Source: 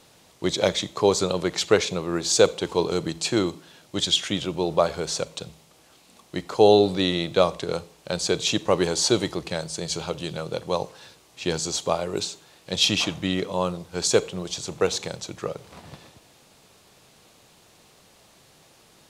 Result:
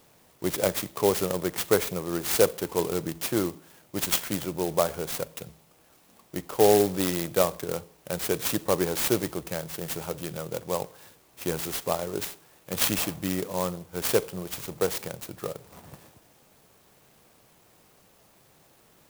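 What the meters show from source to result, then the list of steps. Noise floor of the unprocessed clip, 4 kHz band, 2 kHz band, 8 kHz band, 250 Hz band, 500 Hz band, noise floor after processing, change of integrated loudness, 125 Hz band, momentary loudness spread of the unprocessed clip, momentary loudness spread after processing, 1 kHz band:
-56 dBFS, -9.5 dB, -4.0 dB, -3.5 dB, -3.5 dB, -3.5 dB, -60 dBFS, -3.5 dB, -3.5 dB, 13 LU, 13 LU, -4.0 dB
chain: sampling jitter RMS 0.075 ms; trim -3.5 dB

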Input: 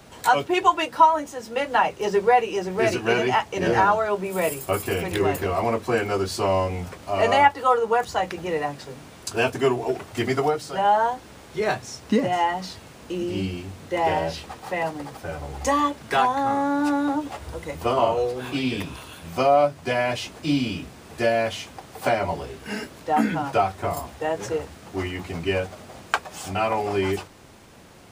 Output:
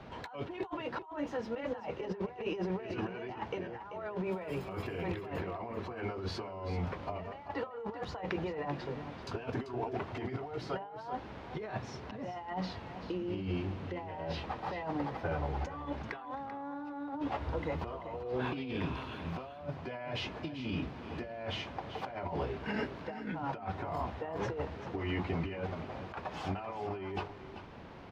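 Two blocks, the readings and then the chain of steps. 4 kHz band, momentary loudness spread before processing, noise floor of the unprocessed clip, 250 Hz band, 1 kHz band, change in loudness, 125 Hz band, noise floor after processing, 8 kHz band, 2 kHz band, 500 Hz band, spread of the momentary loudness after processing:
-14.0 dB, 14 LU, -46 dBFS, -11.5 dB, -18.5 dB, -15.5 dB, -7.0 dB, -48 dBFS, under -20 dB, -16.0 dB, -15.0 dB, 6 LU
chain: peaking EQ 950 Hz +3.5 dB 0.32 oct; compressor with a negative ratio -31 dBFS, ratio -1; distance through air 280 m; on a send: delay 388 ms -11.5 dB; on the sum: trim -7.5 dB

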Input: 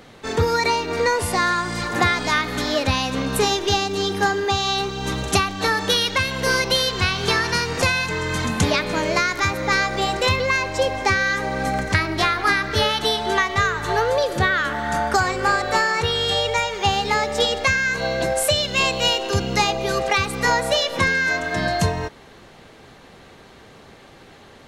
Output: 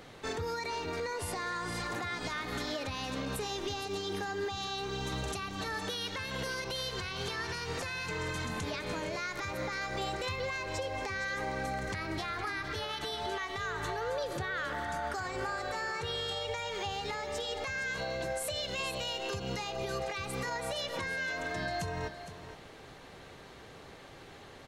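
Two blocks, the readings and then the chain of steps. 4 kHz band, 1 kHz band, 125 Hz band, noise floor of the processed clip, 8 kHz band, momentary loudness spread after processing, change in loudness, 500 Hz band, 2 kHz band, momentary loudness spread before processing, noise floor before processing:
-15.5 dB, -15.5 dB, -15.0 dB, -51 dBFS, -15.0 dB, 5 LU, -15.5 dB, -14.5 dB, -15.5 dB, 4 LU, -46 dBFS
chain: peaking EQ 220 Hz -6 dB 0.28 oct; compression, threshold -26 dBFS, peak gain reduction 12.5 dB; peak limiter -22 dBFS, peak gain reduction 8.5 dB; on a send: delay 463 ms -11.5 dB; on the sum: trim -5 dB

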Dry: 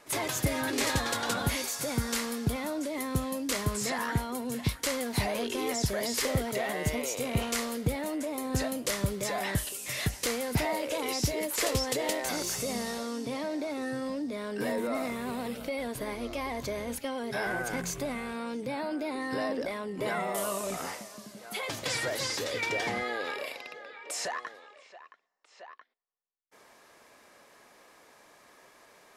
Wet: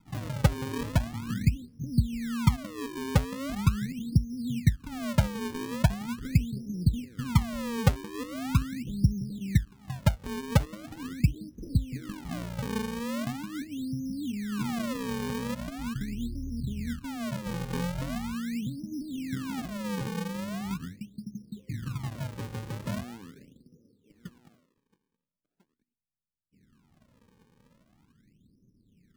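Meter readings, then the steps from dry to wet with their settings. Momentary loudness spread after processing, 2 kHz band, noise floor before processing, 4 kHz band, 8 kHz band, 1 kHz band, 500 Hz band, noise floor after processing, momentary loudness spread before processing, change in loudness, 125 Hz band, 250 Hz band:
10 LU, -7.0 dB, -59 dBFS, -7.5 dB, -11.0 dB, -5.0 dB, -8.0 dB, -79 dBFS, 6 LU, +0.5 dB, +8.0 dB, +3.0 dB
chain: inverse Chebyshev low-pass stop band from 700 Hz, stop band 60 dB; in parallel at 0 dB: compression, threshold -45 dBFS, peak gain reduction 20 dB; on the sum: decimation with a swept rate 37×, swing 160% 0.41 Hz; trim +7 dB

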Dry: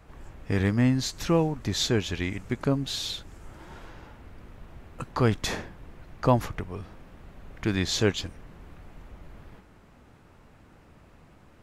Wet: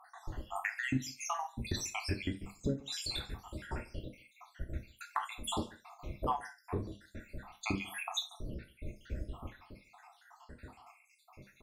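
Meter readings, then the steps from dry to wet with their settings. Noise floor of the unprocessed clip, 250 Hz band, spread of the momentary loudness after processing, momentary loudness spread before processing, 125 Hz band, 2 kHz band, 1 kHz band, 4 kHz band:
-55 dBFS, -13.0 dB, 19 LU, 20 LU, -13.0 dB, -5.5 dB, -4.5 dB, -8.5 dB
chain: random holes in the spectrogram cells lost 80%; dynamic bell 300 Hz, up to +4 dB, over -47 dBFS, Q 0.97; compression 5:1, threshold -40 dBFS, peak gain reduction 20.5 dB; on a send: delay 142 ms -22.5 dB; on the sum: gated-style reverb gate 110 ms falling, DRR 3.5 dB; trim +6 dB

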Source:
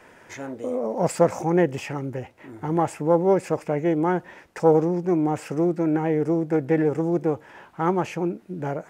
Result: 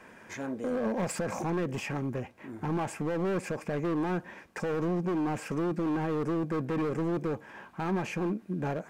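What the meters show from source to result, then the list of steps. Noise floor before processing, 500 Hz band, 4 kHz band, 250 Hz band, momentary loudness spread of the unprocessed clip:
-52 dBFS, -10.5 dB, no reading, -7.0 dB, 13 LU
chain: peak limiter -15 dBFS, peak gain reduction 10.5 dB; hard clipper -25 dBFS, distortion -8 dB; small resonant body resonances 210/1100/1600/2400 Hz, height 8 dB; trim -3.5 dB

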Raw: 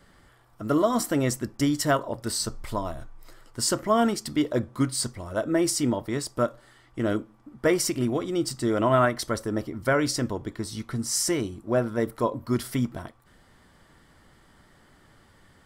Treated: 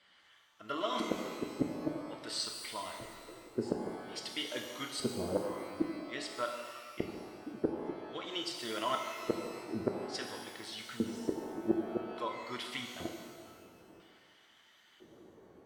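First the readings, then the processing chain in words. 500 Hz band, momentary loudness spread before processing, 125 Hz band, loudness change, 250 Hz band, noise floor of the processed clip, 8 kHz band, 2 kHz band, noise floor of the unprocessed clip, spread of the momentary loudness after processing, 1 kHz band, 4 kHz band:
-11.5 dB, 9 LU, -18.0 dB, -12.0 dB, -12.0 dB, -64 dBFS, -17.5 dB, -11.0 dB, -58 dBFS, 12 LU, -10.5 dB, -6.0 dB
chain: coarse spectral quantiser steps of 15 dB; treble shelf 2.1 kHz -8 dB; LFO band-pass square 0.5 Hz 400–3100 Hz; inverted gate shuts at -27 dBFS, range -34 dB; pitch-shifted reverb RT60 1.7 s, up +12 st, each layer -8 dB, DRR 2.5 dB; trim +8.5 dB

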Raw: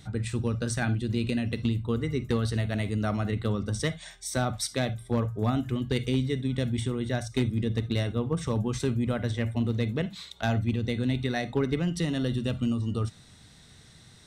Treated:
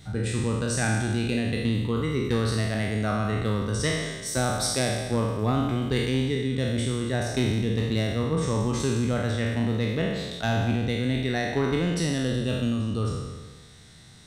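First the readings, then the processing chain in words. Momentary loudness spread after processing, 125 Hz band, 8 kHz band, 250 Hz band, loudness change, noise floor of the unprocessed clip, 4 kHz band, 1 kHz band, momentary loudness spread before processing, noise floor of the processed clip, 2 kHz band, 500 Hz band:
2 LU, +2.0 dB, +6.5 dB, +2.5 dB, +3.0 dB, -54 dBFS, +5.0 dB, +4.5 dB, 3 LU, -48 dBFS, +5.0 dB, +4.0 dB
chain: spectral sustain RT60 1.40 s

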